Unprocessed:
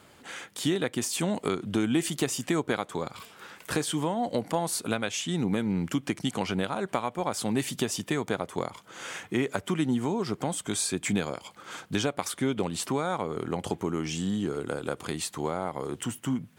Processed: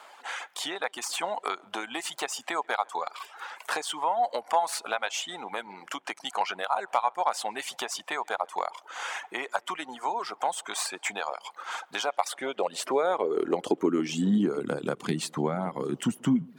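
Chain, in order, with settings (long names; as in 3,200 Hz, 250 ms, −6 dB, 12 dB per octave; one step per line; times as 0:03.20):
stylus tracing distortion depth 0.026 ms
high-shelf EQ 9,300 Hz −10 dB
in parallel at −2 dB: downward compressor, threshold −39 dBFS, peak gain reduction 16.5 dB
on the sum: hard clipping −14 dBFS, distortion −30 dB
high-pass filter sweep 820 Hz → 180 Hz, 0:11.99–0:14.75
on a send: tape delay 137 ms, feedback 67%, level −15.5 dB, low-pass 1,900 Hz
on the sum: reverb reduction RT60 0.78 s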